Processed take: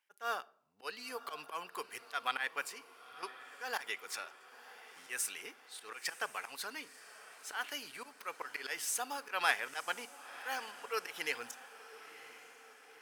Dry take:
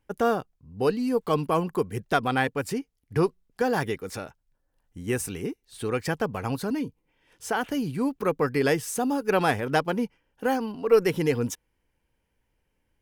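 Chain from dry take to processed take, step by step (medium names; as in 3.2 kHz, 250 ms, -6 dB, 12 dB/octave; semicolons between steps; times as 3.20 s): high-pass 1.5 kHz 12 dB/octave; treble shelf 5.4 kHz -4.5 dB; 2.63–3.23 s: compression, threshold -44 dBFS, peak gain reduction 9 dB; slow attack 126 ms; echo that smears into a reverb 1002 ms, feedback 55%, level -15 dB; reverberation RT60 0.65 s, pre-delay 7 ms, DRR 17.5 dB; trim +1 dB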